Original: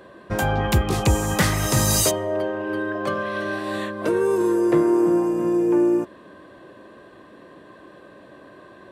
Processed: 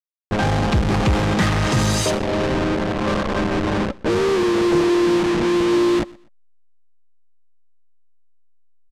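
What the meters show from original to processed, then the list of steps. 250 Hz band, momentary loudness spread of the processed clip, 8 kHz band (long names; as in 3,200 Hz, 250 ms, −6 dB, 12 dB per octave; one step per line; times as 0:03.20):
+2.5 dB, 5 LU, −5.0 dB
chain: hold until the input has moved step −20.5 dBFS
notch filter 560 Hz, Q 12
low-pass that shuts in the quiet parts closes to 770 Hz, open at −17 dBFS
parametric band 200 Hz +4 dB 0.43 octaves
in parallel at −3.5 dB: fuzz pedal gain 42 dB, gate −44 dBFS
on the sum: high-frequency loss of the air 72 metres
on a send: repeating echo 123 ms, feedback 27%, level −23.5 dB
on the sum: level −4.5 dB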